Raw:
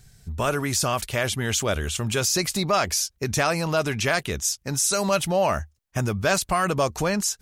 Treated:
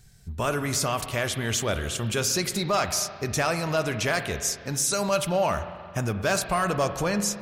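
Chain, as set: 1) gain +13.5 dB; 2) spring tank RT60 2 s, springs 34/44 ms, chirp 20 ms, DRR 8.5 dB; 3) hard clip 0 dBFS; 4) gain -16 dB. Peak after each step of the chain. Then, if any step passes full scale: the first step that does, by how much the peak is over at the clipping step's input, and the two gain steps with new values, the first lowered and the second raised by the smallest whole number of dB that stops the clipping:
+4.5, +5.0, 0.0, -16.0 dBFS; step 1, 5.0 dB; step 1 +8.5 dB, step 4 -11 dB

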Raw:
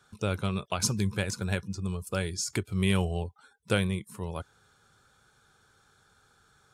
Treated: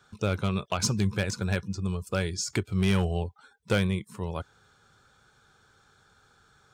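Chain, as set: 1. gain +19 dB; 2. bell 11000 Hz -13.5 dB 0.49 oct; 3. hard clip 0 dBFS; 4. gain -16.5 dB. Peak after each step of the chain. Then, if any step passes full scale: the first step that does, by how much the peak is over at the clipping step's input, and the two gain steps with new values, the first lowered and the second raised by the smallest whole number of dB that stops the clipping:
+8.0, +8.0, 0.0, -16.5 dBFS; step 1, 8.0 dB; step 1 +11 dB, step 4 -8.5 dB

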